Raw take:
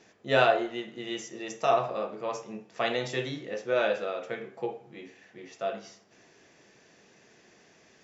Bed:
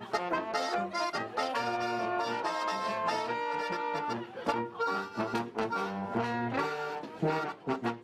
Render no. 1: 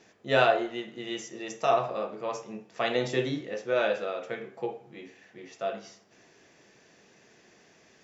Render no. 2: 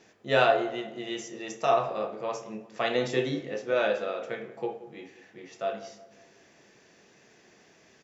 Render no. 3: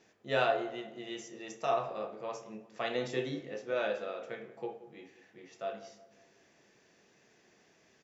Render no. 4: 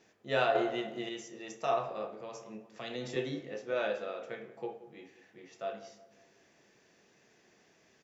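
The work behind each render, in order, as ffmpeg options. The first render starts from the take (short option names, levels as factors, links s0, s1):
-filter_complex "[0:a]asettb=1/sr,asplit=3[s0][s1][s2];[s0]atrim=end=2.954[s3];[s1]atrim=start=2.95:end=3.41,asetpts=PTS-STARTPTS,afade=t=in:d=0.004:c=qsin,afade=t=out:st=0.456:d=0.004:c=qsin,equalizer=f=280:w=0.64:g=6[s4];[s2]atrim=start=3.406[s5];[s3][s4]acrossfade=d=0.004:c1=hsin:c2=qsin[s6];[s6][s5]acrossfade=d=0.004:c1=qsin:c2=hsin"
-filter_complex "[0:a]asplit=2[s0][s1];[s1]adelay=28,volume=0.211[s2];[s0][s2]amix=inputs=2:normalize=0,asplit=2[s3][s4];[s4]adelay=181,lowpass=f=1100:p=1,volume=0.2,asplit=2[s5][s6];[s6]adelay=181,lowpass=f=1100:p=1,volume=0.48,asplit=2[s7][s8];[s8]adelay=181,lowpass=f=1100:p=1,volume=0.48,asplit=2[s9][s10];[s10]adelay=181,lowpass=f=1100:p=1,volume=0.48,asplit=2[s11][s12];[s12]adelay=181,lowpass=f=1100:p=1,volume=0.48[s13];[s3][s5][s7][s9][s11][s13]amix=inputs=6:normalize=0"
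-af "volume=0.447"
-filter_complex "[0:a]asettb=1/sr,asplit=3[s0][s1][s2];[s0]atrim=end=2.214[s3];[s1]atrim=start=2.21:end=3.16,asetpts=PTS-STARTPTS,afade=t=in:d=0.004:c=qsin,afade=t=out:st=0.946:d=0.004:c=qsin,acrossover=split=340|3000[s4][s5][s6];[s5]acompressor=threshold=0.00794:ratio=6:attack=3.2:release=140:knee=2.83:detection=peak[s7];[s4][s7][s6]amix=inputs=3:normalize=0[s8];[s2]atrim=start=3.156[s9];[s3][s8]acrossfade=d=0.004:c1=hsin:c2=qsin[s10];[s10][s9]acrossfade=d=0.004:c1=qsin:c2=hsin,asplit=3[s11][s12][s13];[s11]atrim=end=0.552[s14];[s12]atrim=start=0.548:end=1.092,asetpts=PTS-STARTPTS,volume=2[s15];[s13]atrim=start=1.088[s16];[s14][s15]acrossfade=d=0.004:c1=hsin:c2=hsin[s17];[s17][s16]acrossfade=d=0.004:c1=hsin:c2=hsin"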